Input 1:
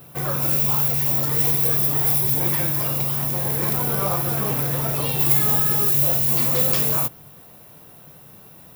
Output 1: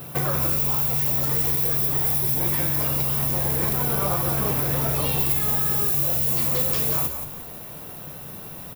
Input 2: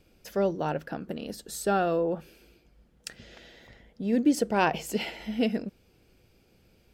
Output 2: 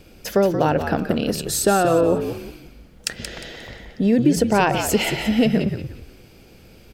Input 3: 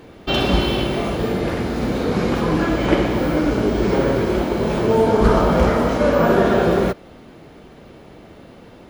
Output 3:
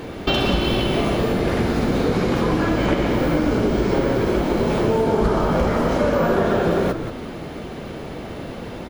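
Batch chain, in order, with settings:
downward compressor 4 to 1, threshold −29 dBFS
on a send: echo with shifted repeats 178 ms, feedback 31%, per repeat −66 Hz, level −8 dB
on the sum: loudness normalisation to −20 LKFS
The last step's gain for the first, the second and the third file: +7.0, +14.5, +10.0 decibels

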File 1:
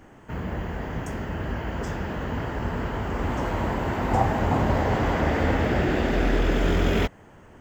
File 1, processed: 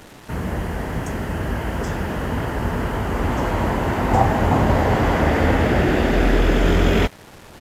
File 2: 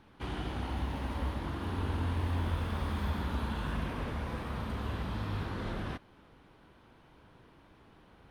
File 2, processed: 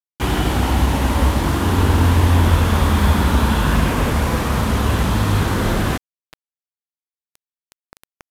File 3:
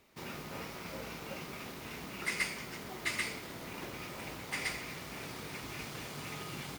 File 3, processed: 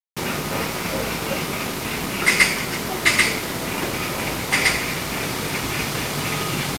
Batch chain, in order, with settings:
bit reduction 8 bits
downsampling to 32,000 Hz
normalise the peak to −2 dBFS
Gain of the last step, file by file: +5.5, +18.5, +18.5 decibels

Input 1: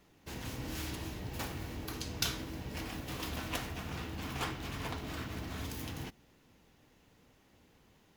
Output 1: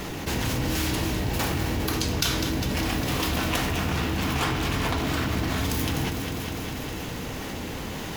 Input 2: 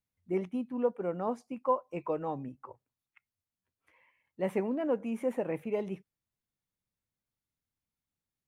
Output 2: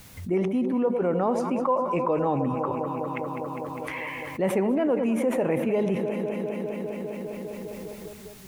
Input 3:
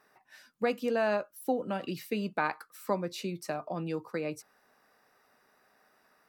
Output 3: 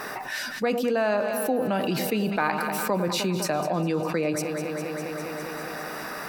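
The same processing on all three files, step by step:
delay that swaps between a low-pass and a high-pass 101 ms, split 940 Hz, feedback 81%, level −12.5 dB
envelope flattener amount 70%
loudness normalisation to −27 LKFS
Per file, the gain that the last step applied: +6.5, +2.5, +2.5 decibels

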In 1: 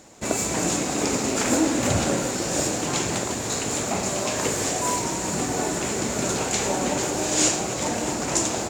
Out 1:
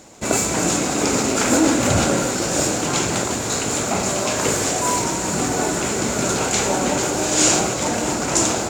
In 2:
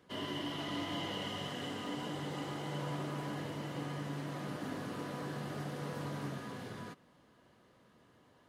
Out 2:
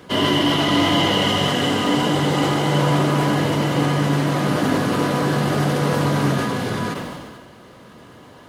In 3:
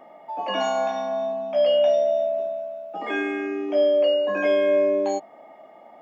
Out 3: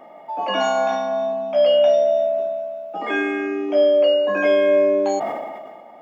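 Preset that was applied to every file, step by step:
notch filter 1,800 Hz, Q 26
dynamic equaliser 1,400 Hz, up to +4 dB, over −46 dBFS, Q 4.6
level that may fall only so fast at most 33 dB per second
loudness normalisation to −19 LKFS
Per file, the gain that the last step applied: +4.0, +21.0, +3.5 decibels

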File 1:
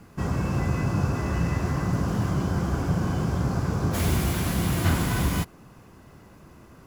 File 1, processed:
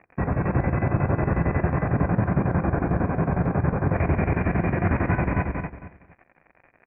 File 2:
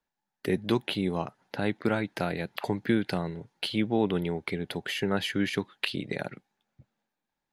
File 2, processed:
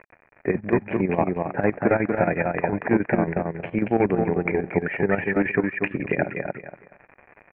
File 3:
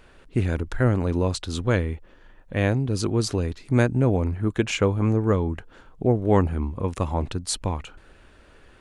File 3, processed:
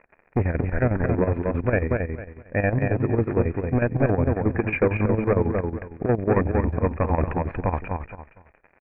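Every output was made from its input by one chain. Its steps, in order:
noise gate −41 dBFS, range −23 dB
in parallel at +1.5 dB: speech leveller 0.5 s
on the sum: hard clipping −12 dBFS
surface crackle 93 per second −28 dBFS
Chebyshev low-pass with heavy ripple 2,500 Hz, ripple 6 dB
on a send: repeating echo 234 ms, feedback 25%, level −4 dB
on the sum: square-wave tremolo 11 Hz, depth 65%, duty 65%
loudness normalisation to −24 LKFS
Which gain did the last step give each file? +1.0, +5.0, +1.0 decibels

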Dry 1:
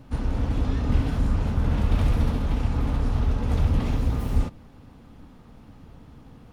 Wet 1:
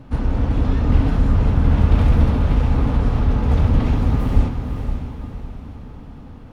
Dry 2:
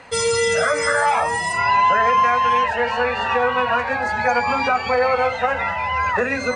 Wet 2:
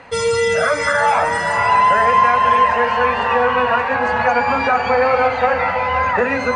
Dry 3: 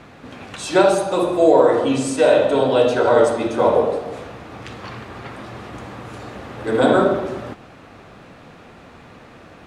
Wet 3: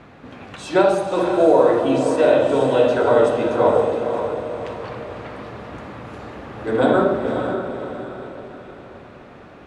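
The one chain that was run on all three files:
high-shelf EQ 4,500 Hz −10.5 dB
on a send: feedback delay with all-pass diffusion 521 ms, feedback 45%, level −7 dB
on the sum: normalise the peak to −3 dBFS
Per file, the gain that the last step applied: +6.0, +3.0, −1.0 decibels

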